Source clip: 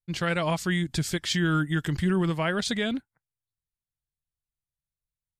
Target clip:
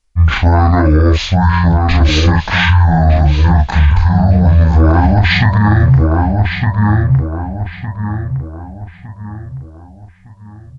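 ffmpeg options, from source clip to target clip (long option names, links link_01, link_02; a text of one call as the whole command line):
ffmpeg -i in.wav -filter_complex "[0:a]lowshelf=frequency=210:gain=11,areverse,acompressor=threshold=-28dB:ratio=6,areverse,flanger=delay=18.5:depth=2.8:speed=0.39,asplit=2[link_01][link_02];[link_02]adelay=605,lowpass=frequency=3800:poles=1,volume=-5.5dB,asplit=2[link_03][link_04];[link_04]adelay=605,lowpass=frequency=3800:poles=1,volume=0.4,asplit=2[link_05][link_06];[link_06]adelay=605,lowpass=frequency=3800:poles=1,volume=0.4,asplit=2[link_07][link_08];[link_08]adelay=605,lowpass=frequency=3800:poles=1,volume=0.4,asplit=2[link_09][link_10];[link_10]adelay=605,lowpass=frequency=3800:poles=1,volume=0.4[link_11];[link_03][link_05][link_07][link_09][link_11]amix=inputs=5:normalize=0[link_12];[link_01][link_12]amix=inputs=2:normalize=0,asetrate=22050,aresample=44100,alimiter=level_in=27.5dB:limit=-1dB:release=50:level=0:latency=1,volume=-1dB" out.wav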